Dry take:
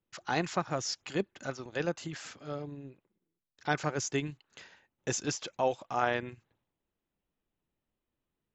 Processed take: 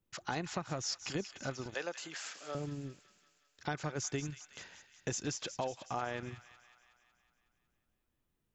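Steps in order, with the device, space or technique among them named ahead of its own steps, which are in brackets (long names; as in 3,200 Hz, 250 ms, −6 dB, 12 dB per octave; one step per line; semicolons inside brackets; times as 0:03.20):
0:01.74–0:02.55: high-pass filter 550 Hz 12 dB per octave
ASMR close-microphone chain (low-shelf EQ 160 Hz +7.5 dB; downward compressor, threshold −34 dBFS, peak gain reduction 11.5 dB; high-shelf EQ 6,900 Hz +4.5 dB)
delay with a high-pass on its return 184 ms, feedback 63%, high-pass 1,700 Hz, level −10.5 dB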